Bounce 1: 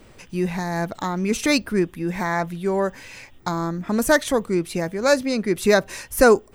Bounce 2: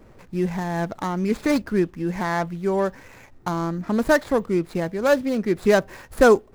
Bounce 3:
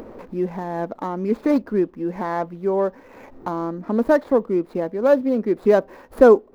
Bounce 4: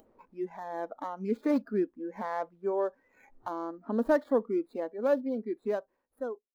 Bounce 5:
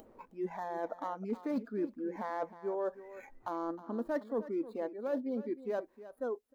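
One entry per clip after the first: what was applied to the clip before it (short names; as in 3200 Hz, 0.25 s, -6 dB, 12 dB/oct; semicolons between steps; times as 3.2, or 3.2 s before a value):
median filter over 15 samples
graphic EQ 125/250/500/1000/8000 Hz -6/+11/+10/+7/-7 dB; upward compressor, threshold -19 dBFS; gain -9 dB
ending faded out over 1.82 s; spectral noise reduction 17 dB; gain -8.5 dB
reverse; compressor 4:1, threshold -40 dBFS, peak gain reduction 17 dB; reverse; echo 0.313 s -15 dB; gain +5.5 dB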